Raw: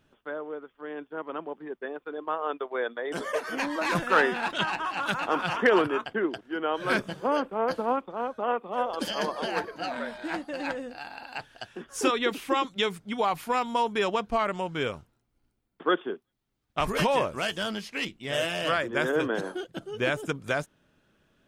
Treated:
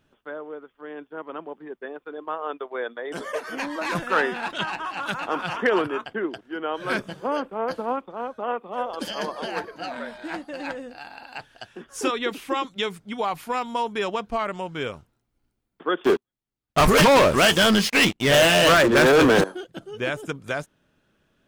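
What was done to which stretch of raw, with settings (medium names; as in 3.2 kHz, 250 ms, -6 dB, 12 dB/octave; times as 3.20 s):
16.04–19.44 s: waveshaping leveller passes 5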